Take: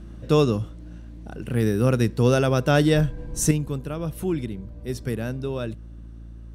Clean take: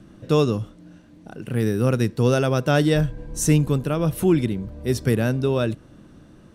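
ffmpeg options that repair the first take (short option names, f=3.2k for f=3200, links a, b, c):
-af "bandreject=f=56.3:t=h:w=4,bandreject=f=112.6:t=h:w=4,bandreject=f=168.9:t=h:w=4,bandreject=f=225.2:t=h:w=4,bandreject=f=281.5:t=h:w=4,bandreject=f=337.8:t=h:w=4,asetnsamples=n=441:p=0,asendcmd='3.51 volume volume 7.5dB',volume=0dB"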